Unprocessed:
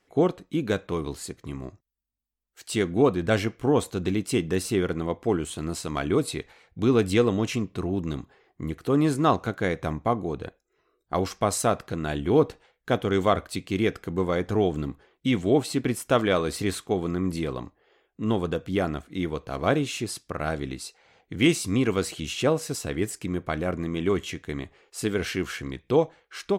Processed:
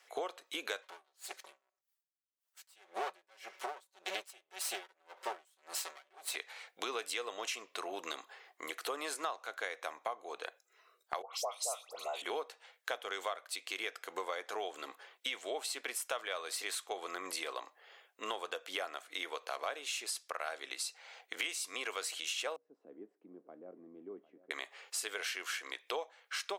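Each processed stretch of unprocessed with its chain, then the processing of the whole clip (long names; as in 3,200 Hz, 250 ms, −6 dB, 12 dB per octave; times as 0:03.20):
0:00.82–0:06.36: lower of the sound and its delayed copy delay 5.3 ms + tremolo with a sine in dB 1.8 Hz, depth 40 dB
0:11.22–0:12.22: phaser with its sweep stopped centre 690 Hz, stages 4 + all-pass dispersion highs, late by 116 ms, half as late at 1,800 Hz
0:22.56–0:24.51: mu-law and A-law mismatch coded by mu + flat-topped band-pass 200 Hz, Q 1.5 + single-tap delay 751 ms −17 dB
whole clip: high-pass filter 550 Hz 24 dB per octave; tilt shelving filter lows −3.5 dB, about 1,300 Hz; downward compressor 6 to 1, threshold −42 dBFS; level +5.5 dB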